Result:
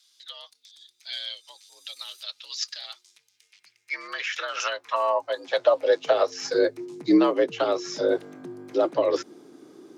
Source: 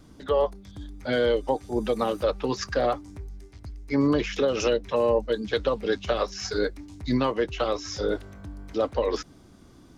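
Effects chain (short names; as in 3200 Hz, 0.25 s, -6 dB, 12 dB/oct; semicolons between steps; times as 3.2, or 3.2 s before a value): frequency shift +64 Hz; high-pass sweep 3800 Hz -> 310 Hz, 3.02–6.73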